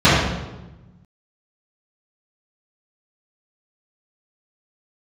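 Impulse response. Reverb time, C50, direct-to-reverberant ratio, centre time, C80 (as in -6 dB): 1.1 s, -0.5 dB, -14.0 dB, 77 ms, 2.0 dB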